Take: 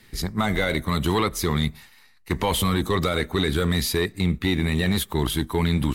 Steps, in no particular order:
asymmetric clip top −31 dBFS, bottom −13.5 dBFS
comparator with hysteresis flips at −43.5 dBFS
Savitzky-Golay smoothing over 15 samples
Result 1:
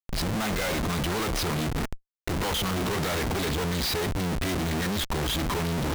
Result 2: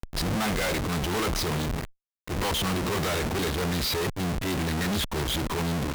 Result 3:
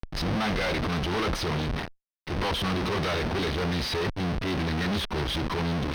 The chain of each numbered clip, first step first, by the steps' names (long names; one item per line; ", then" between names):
asymmetric clip, then Savitzky-Golay smoothing, then comparator with hysteresis
Savitzky-Golay smoothing, then comparator with hysteresis, then asymmetric clip
comparator with hysteresis, then asymmetric clip, then Savitzky-Golay smoothing